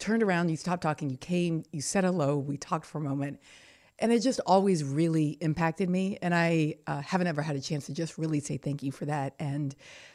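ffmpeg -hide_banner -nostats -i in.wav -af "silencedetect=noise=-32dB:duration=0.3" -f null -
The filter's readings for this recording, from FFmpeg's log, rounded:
silence_start: 3.32
silence_end: 4.01 | silence_duration: 0.70
silence_start: 9.71
silence_end: 10.14 | silence_duration: 0.43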